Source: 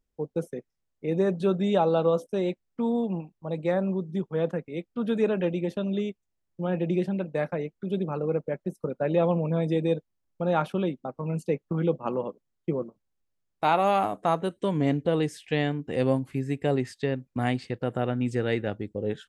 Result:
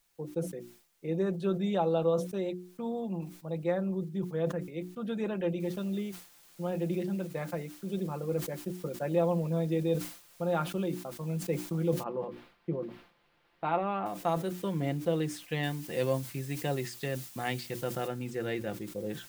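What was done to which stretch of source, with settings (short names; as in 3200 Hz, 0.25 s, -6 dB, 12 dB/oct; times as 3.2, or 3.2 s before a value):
5.6 noise floor step -67 dB -53 dB
12.03–14.06 air absorption 400 m
15.63–18.08 high shelf 2600 Hz +8.5 dB
whole clip: notches 60/120/180/240/300/360 Hz; comb 5.8 ms, depth 49%; sustainer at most 110 dB/s; gain -7 dB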